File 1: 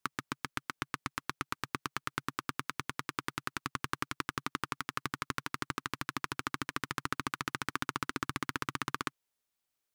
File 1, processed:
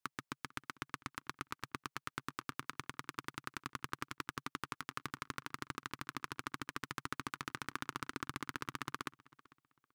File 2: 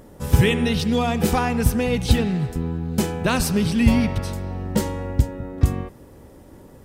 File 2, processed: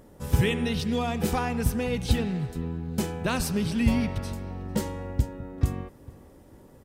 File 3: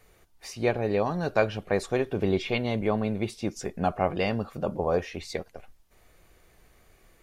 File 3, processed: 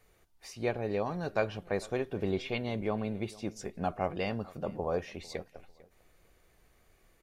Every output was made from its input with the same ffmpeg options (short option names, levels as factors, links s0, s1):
-filter_complex "[0:a]asplit=2[s0][s1];[s1]adelay=448,lowpass=f=3300:p=1,volume=0.0841,asplit=2[s2][s3];[s3]adelay=448,lowpass=f=3300:p=1,volume=0.28[s4];[s0][s2][s4]amix=inputs=3:normalize=0,volume=0.473"